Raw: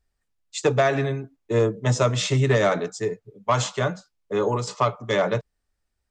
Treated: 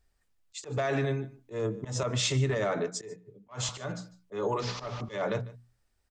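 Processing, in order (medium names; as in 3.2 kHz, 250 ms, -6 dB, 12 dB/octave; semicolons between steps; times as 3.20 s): 4.60–5.01 s: one-bit delta coder 32 kbps, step -34.5 dBFS; hum notches 60/120/180/240/300 Hz; peak limiter -17.5 dBFS, peak gain reduction 9.5 dB; compression 2:1, threshold -34 dBFS, peak gain reduction 7.5 dB; slow attack 148 ms; delay 149 ms -20 dB; 2.03–3.69 s: three bands expanded up and down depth 70%; trim +3.5 dB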